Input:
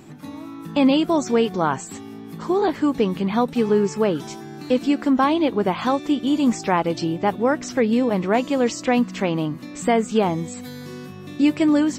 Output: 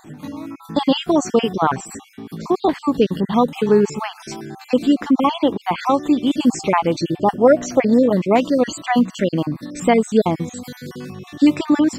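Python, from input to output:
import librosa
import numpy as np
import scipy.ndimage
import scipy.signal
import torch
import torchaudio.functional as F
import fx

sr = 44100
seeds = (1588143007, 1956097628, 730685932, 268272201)

y = fx.spec_dropout(x, sr, seeds[0], share_pct=38)
y = fx.peak_eq(y, sr, hz=640.0, db=10.5, octaves=0.5, at=(7.41, 8.06))
y = y * 10.0 ** (4.5 / 20.0)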